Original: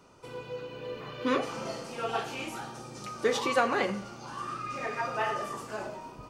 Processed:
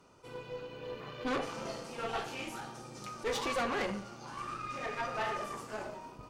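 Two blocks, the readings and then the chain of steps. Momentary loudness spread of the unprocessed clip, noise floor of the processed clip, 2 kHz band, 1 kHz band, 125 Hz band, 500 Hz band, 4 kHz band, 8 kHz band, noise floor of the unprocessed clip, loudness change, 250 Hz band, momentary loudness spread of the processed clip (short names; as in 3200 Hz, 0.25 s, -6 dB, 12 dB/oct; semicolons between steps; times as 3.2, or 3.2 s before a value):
14 LU, -52 dBFS, -5.0 dB, -5.0 dB, -3.5 dB, -6.0 dB, -3.5 dB, -3.5 dB, -48 dBFS, -5.0 dB, -5.5 dB, 12 LU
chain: tube stage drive 28 dB, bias 0.7; attack slew limiter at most 340 dB/s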